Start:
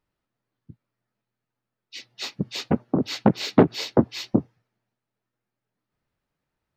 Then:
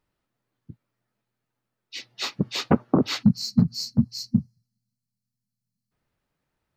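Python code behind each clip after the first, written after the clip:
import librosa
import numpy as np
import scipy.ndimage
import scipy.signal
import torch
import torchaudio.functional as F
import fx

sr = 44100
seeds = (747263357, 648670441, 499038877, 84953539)

y = fx.spec_box(x, sr, start_s=3.23, length_s=2.69, low_hz=250.0, high_hz=4000.0, gain_db=-28)
y = fx.dynamic_eq(y, sr, hz=1200.0, q=2.1, threshold_db=-50.0, ratio=4.0, max_db=7)
y = F.gain(torch.from_numpy(y), 2.5).numpy()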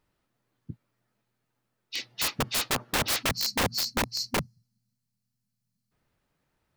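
y = (np.mod(10.0 ** (23.0 / 20.0) * x + 1.0, 2.0) - 1.0) / 10.0 ** (23.0 / 20.0)
y = F.gain(torch.from_numpy(y), 3.0).numpy()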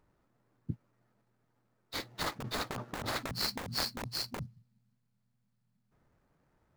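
y = scipy.signal.medfilt(x, 15)
y = fx.over_compress(y, sr, threshold_db=-36.0, ratio=-1.0)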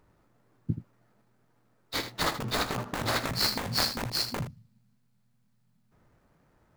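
y = fx.room_early_taps(x, sr, ms=(18, 79), db=(-12.0, -10.5))
y = F.gain(torch.from_numpy(y), 6.5).numpy()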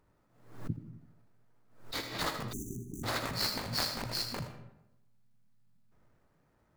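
y = fx.rev_freeverb(x, sr, rt60_s=0.9, hf_ratio=0.6, predelay_ms=40, drr_db=8.0)
y = fx.spec_erase(y, sr, start_s=2.52, length_s=0.52, low_hz=410.0, high_hz=5800.0)
y = fx.pre_swell(y, sr, db_per_s=100.0)
y = F.gain(torch.from_numpy(y), -6.0).numpy()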